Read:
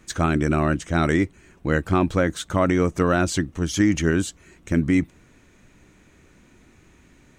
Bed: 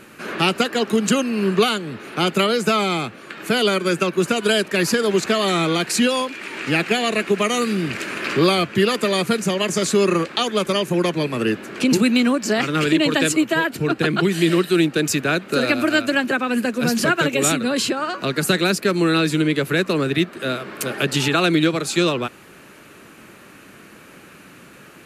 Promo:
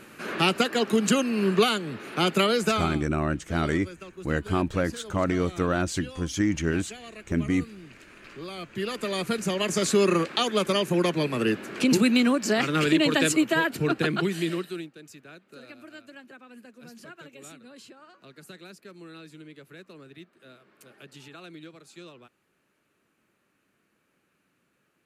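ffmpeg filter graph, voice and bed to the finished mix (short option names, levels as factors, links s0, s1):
-filter_complex "[0:a]adelay=2600,volume=0.531[s0];[1:a]volume=5.62,afade=t=out:st=2.62:d=0.39:silence=0.112202,afade=t=in:st=8.47:d=1.42:silence=0.112202,afade=t=out:st=13.86:d=1.05:silence=0.0668344[s1];[s0][s1]amix=inputs=2:normalize=0"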